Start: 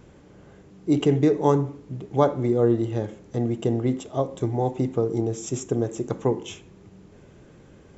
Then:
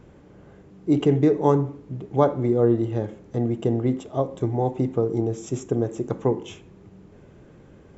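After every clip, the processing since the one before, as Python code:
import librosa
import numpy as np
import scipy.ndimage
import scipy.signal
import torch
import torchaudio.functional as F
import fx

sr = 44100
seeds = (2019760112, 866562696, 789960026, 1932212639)

y = fx.high_shelf(x, sr, hz=3100.0, db=-8.5)
y = y * librosa.db_to_amplitude(1.0)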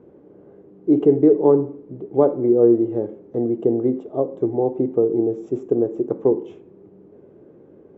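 y = fx.bandpass_q(x, sr, hz=390.0, q=1.8)
y = y * librosa.db_to_amplitude(7.0)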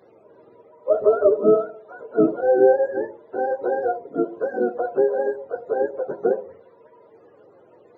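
y = fx.octave_mirror(x, sr, pivot_hz=430.0)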